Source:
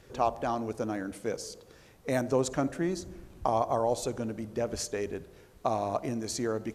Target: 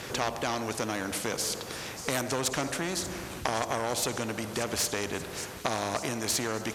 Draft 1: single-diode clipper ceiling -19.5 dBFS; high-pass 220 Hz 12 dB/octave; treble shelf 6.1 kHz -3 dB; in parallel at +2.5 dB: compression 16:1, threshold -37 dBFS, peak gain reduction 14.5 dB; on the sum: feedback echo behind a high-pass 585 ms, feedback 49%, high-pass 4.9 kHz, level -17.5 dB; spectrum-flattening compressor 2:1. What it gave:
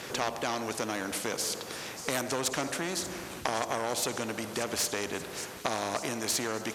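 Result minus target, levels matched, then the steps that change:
125 Hz band -4.0 dB
change: high-pass 100 Hz 12 dB/octave

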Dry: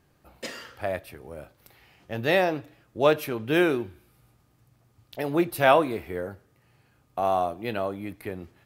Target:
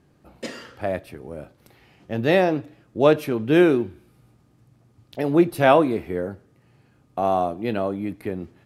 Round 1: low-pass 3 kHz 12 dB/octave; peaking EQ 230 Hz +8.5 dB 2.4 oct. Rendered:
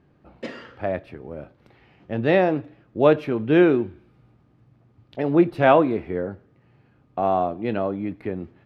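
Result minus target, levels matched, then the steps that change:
8 kHz band -16.5 dB
change: low-pass 11 kHz 12 dB/octave

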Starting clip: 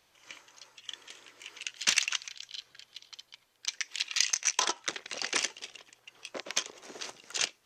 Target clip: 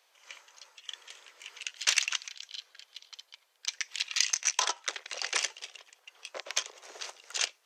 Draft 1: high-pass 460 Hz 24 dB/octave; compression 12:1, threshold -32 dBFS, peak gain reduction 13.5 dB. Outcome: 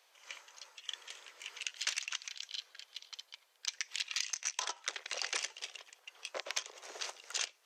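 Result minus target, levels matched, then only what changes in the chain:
compression: peak gain reduction +13.5 dB
remove: compression 12:1, threshold -32 dBFS, peak gain reduction 13.5 dB

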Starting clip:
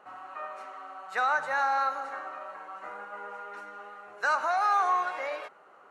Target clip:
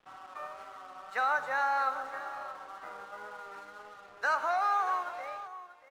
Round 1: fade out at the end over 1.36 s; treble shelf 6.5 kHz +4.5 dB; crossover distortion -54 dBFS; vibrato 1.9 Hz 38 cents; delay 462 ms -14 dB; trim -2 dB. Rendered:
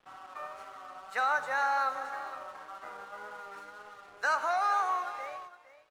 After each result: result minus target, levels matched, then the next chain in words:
echo 174 ms early; 8 kHz band +4.0 dB
fade out at the end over 1.36 s; treble shelf 6.5 kHz +4.5 dB; crossover distortion -54 dBFS; vibrato 1.9 Hz 38 cents; delay 636 ms -14 dB; trim -2 dB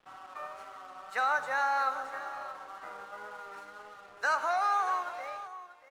8 kHz band +4.0 dB
fade out at the end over 1.36 s; treble shelf 6.5 kHz -6.5 dB; crossover distortion -54 dBFS; vibrato 1.9 Hz 38 cents; delay 636 ms -14 dB; trim -2 dB

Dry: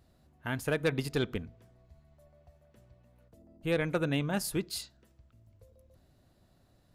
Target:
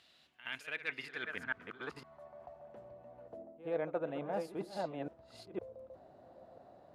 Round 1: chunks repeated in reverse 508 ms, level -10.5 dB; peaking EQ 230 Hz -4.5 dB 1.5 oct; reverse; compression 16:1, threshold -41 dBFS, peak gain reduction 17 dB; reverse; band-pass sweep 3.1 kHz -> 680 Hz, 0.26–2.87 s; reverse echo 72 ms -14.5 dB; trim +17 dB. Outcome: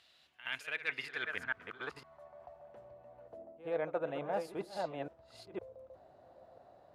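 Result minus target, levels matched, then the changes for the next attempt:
250 Hz band -4.0 dB
change: peaking EQ 230 Hz +2.5 dB 1.5 oct

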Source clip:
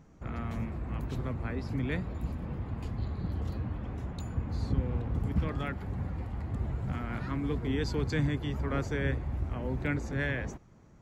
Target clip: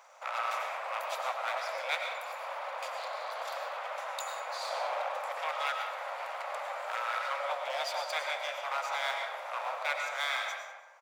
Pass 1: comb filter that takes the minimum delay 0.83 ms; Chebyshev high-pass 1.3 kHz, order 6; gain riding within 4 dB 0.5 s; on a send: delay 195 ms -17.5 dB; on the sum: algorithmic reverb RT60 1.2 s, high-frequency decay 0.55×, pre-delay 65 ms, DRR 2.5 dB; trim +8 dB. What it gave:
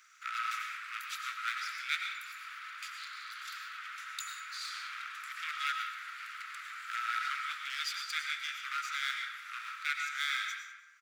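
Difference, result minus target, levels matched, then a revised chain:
1 kHz band -3.5 dB
comb filter that takes the minimum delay 0.83 ms; Chebyshev high-pass 540 Hz, order 6; gain riding within 4 dB 0.5 s; on a send: delay 195 ms -17.5 dB; on the sum: algorithmic reverb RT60 1.2 s, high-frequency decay 0.55×, pre-delay 65 ms, DRR 2.5 dB; trim +8 dB

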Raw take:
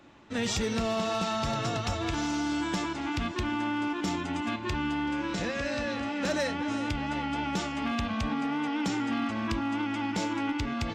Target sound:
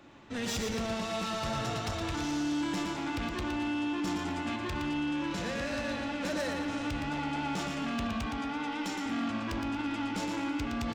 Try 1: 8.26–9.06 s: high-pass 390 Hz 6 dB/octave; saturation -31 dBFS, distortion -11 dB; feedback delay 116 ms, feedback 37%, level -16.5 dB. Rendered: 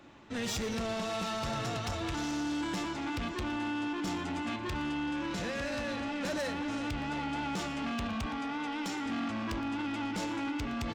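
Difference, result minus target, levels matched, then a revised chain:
echo-to-direct -11 dB
8.26–9.06 s: high-pass 390 Hz 6 dB/octave; saturation -31 dBFS, distortion -11 dB; feedback delay 116 ms, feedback 37%, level -5.5 dB

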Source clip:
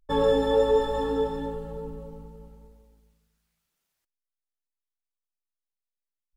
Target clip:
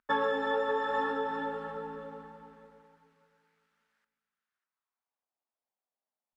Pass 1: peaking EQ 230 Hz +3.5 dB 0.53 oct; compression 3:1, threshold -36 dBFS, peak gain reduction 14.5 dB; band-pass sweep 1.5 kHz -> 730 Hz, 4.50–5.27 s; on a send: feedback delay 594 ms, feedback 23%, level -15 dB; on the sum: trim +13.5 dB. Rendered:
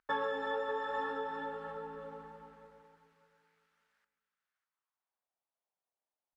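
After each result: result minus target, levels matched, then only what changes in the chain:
compression: peak gain reduction +5.5 dB; 250 Hz band -2.5 dB
change: compression 3:1, threshold -27 dBFS, peak gain reduction 8.5 dB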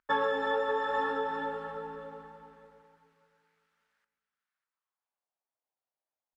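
250 Hz band -3.5 dB
change: peaking EQ 230 Hz +10.5 dB 0.53 oct

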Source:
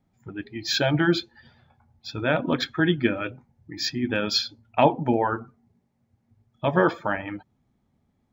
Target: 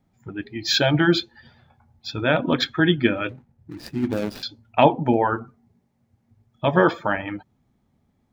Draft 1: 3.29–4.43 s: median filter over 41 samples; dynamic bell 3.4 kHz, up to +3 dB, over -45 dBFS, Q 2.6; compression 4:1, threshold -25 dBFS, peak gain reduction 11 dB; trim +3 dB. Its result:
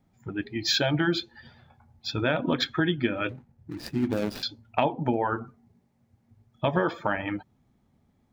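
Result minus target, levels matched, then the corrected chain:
compression: peak gain reduction +11 dB
3.29–4.43 s: median filter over 41 samples; dynamic bell 3.4 kHz, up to +3 dB, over -45 dBFS, Q 2.6; trim +3 dB

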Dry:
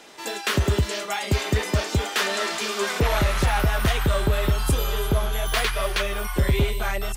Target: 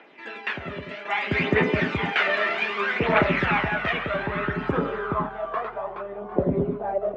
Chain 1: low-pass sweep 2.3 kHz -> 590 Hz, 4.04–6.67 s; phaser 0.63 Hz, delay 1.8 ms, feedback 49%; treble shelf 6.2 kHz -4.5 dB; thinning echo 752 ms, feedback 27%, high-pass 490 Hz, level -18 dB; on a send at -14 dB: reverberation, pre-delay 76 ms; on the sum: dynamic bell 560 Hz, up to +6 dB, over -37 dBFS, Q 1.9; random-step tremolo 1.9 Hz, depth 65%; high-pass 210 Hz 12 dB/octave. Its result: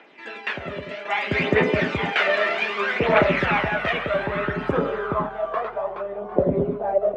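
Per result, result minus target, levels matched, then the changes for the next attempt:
8 kHz band +3.0 dB; 500 Hz band +2.0 dB
change: treble shelf 6.2 kHz -14 dB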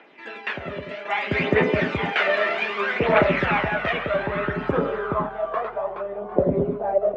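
500 Hz band +2.5 dB
remove: dynamic bell 560 Hz, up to +6 dB, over -37 dBFS, Q 1.9

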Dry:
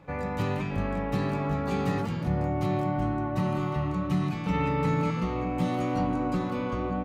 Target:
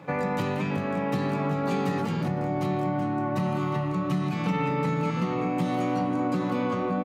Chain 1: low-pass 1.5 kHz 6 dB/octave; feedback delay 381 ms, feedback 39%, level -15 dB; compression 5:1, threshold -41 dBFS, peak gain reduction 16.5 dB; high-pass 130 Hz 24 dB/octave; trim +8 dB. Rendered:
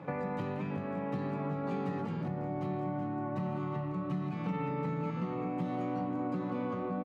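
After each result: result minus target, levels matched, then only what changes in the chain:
compression: peak gain reduction +8 dB; 2 kHz band -3.5 dB
change: compression 5:1, threshold -31 dBFS, peak gain reduction 8.5 dB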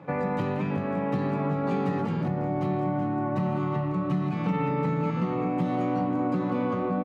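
2 kHz band -3.5 dB
remove: low-pass 1.5 kHz 6 dB/octave

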